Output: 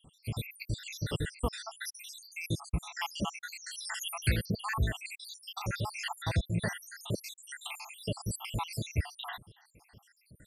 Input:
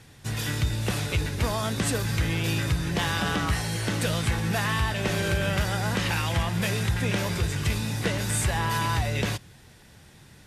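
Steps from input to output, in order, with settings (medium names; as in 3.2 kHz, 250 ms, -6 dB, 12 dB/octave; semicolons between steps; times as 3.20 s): random holes in the spectrogram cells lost 82%; 3.77–4.46 s: treble shelf 3 kHz +8.5 dB; trim -2 dB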